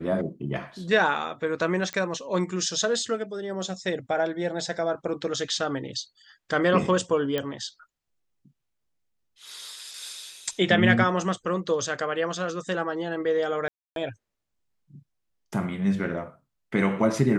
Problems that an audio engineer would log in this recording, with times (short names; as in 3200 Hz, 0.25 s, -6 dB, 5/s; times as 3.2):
1.93 pop -15 dBFS
7.38 pop -14 dBFS
13.68–13.96 gap 0.282 s